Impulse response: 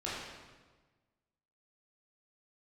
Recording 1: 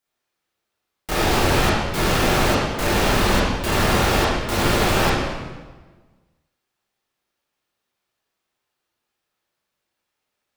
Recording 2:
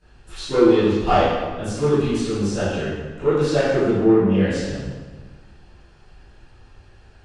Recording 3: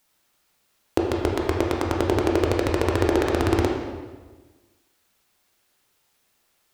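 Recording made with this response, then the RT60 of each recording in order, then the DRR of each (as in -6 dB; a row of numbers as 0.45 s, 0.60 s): 1; 1.3 s, 1.3 s, 1.3 s; -8.5 dB, -18.5 dB, -1.0 dB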